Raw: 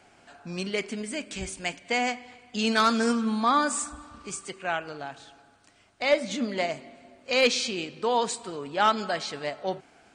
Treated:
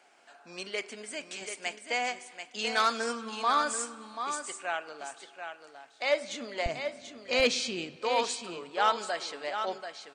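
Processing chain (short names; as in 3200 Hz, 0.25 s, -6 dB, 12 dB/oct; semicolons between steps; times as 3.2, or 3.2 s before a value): HPF 450 Hz 12 dB/oct, from 6.66 s 62 Hz, from 7.96 s 410 Hz; echo 0.736 s -8 dB; gain -3.5 dB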